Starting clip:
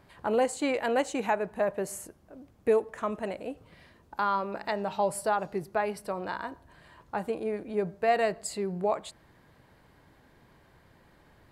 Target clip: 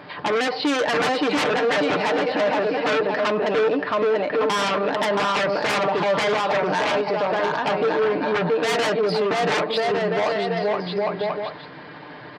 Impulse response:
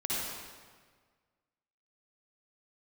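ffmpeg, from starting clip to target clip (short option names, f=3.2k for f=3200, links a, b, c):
-af "aresample=11025,asoftclip=type=hard:threshold=-23.5dB,aresample=44100,lowshelf=f=230:g=-6,aecho=1:1:630|1071|1380|1596|1747:0.631|0.398|0.251|0.158|0.1,aeval=exprs='0.15*sin(PI/2*4.47*val(0)/0.15)':c=same,bass=f=250:g=-1,treble=f=4k:g=-4,aecho=1:1:6.7:0.47,alimiter=limit=-18.5dB:level=0:latency=1:release=99,atempo=0.93,highpass=150,volume=3.5dB"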